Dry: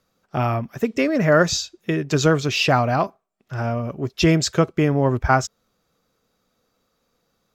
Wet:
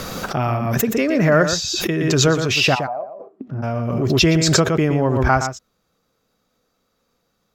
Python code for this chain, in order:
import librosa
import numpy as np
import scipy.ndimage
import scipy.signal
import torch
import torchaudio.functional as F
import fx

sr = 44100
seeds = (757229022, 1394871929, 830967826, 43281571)

p1 = fx.bandpass_q(x, sr, hz=fx.line((2.74, 980.0), (3.62, 190.0)), q=8.2, at=(2.74, 3.62), fade=0.02)
p2 = p1 + fx.echo_single(p1, sr, ms=118, db=-8.5, dry=0)
y = fx.pre_swell(p2, sr, db_per_s=25.0)